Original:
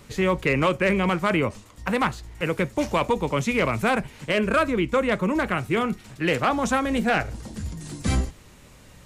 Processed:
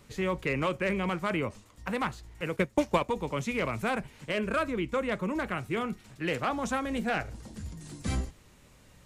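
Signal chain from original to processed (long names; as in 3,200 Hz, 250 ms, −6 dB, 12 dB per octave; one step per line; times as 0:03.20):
0:02.56–0:03.09: transient designer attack +9 dB, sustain −8 dB
level −8 dB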